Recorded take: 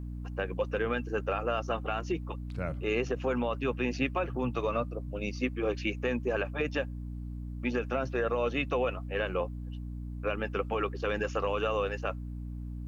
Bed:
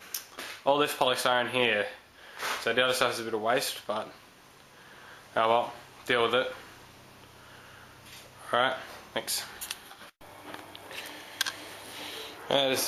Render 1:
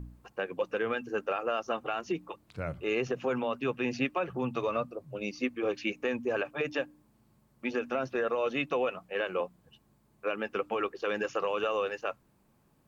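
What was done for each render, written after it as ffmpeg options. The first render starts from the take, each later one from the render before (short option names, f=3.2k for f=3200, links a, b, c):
-af "bandreject=f=60:t=h:w=4,bandreject=f=120:t=h:w=4,bandreject=f=180:t=h:w=4,bandreject=f=240:t=h:w=4,bandreject=f=300:t=h:w=4"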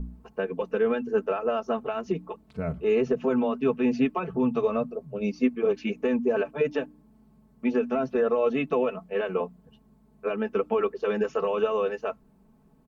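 -af "tiltshelf=f=970:g=7,aecho=1:1:4.6:0.83"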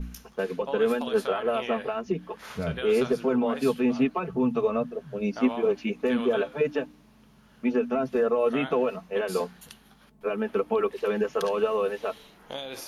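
-filter_complex "[1:a]volume=-11dB[a];[0:a][a]amix=inputs=2:normalize=0"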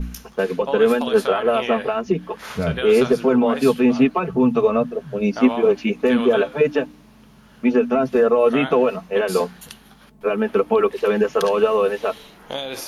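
-af "volume=8dB"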